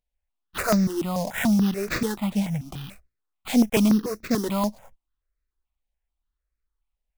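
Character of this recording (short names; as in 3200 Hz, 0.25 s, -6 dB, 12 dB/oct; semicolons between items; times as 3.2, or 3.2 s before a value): aliases and images of a low sample rate 5700 Hz, jitter 20%; notches that jump at a steady rate 6.9 Hz 340–3100 Hz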